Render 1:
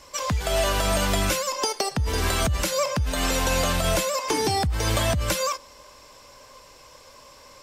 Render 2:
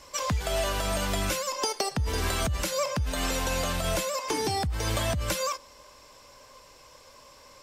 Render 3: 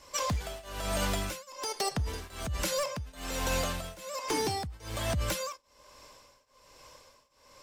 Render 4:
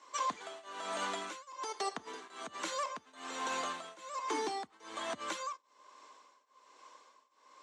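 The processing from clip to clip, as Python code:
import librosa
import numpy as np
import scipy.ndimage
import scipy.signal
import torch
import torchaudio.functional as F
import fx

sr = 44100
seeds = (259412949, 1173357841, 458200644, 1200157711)

y1 = fx.rider(x, sr, range_db=10, speed_s=0.5)
y1 = y1 * librosa.db_to_amplitude(-4.5)
y2 = 10.0 ** (-22.0 / 20.0) * (np.abs((y1 / 10.0 ** (-22.0 / 20.0) + 3.0) % 4.0 - 2.0) - 1.0)
y2 = fx.tremolo_shape(y2, sr, shape='triangle', hz=1.2, depth_pct=95)
y3 = fx.cabinet(y2, sr, low_hz=280.0, low_slope=24, high_hz=7200.0, hz=(550.0, 1100.0, 2600.0, 5100.0), db=(-8, 6, -4, -10))
y3 = y3 * librosa.db_to_amplitude(-3.5)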